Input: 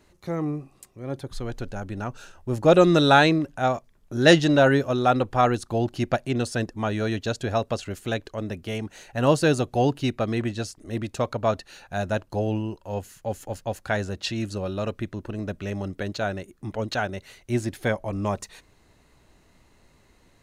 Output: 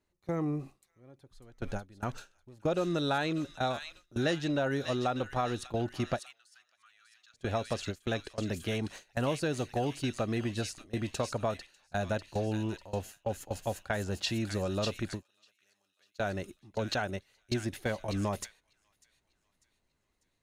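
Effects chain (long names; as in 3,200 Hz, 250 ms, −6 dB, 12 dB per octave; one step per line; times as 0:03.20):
downward compressor 5 to 1, threshold −29 dBFS, peak gain reduction 17 dB
0:06.19–0:07.34: elliptic high-pass filter 1,200 Hz, stop band 40 dB
0:15.23–0:16.19: first difference
on a send: delay with a high-pass on its return 596 ms, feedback 48%, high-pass 2,300 Hz, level −3.5 dB
on the sum: noise gate with hold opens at −23 dBFS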